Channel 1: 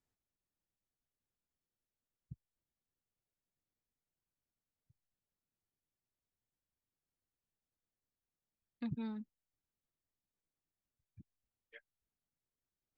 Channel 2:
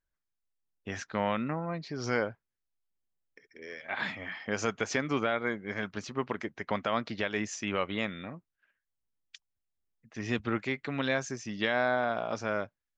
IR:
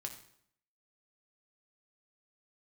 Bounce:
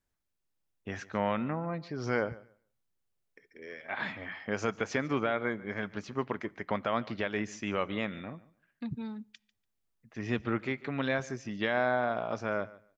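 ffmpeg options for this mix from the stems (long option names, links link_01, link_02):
-filter_complex "[0:a]volume=2dB,asplit=2[link_01][link_02];[link_02]volume=-18dB[link_03];[1:a]highshelf=frequency=4100:gain=-10.5,volume=-1dB,asplit=3[link_04][link_05][link_06];[link_05]volume=-15dB[link_07];[link_06]volume=-19dB[link_08];[2:a]atrim=start_sample=2205[link_09];[link_03][link_07]amix=inputs=2:normalize=0[link_10];[link_10][link_09]afir=irnorm=-1:irlink=0[link_11];[link_08]aecho=0:1:145|290|435:1|0.16|0.0256[link_12];[link_01][link_04][link_11][link_12]amix=inputs=4:normalize=0"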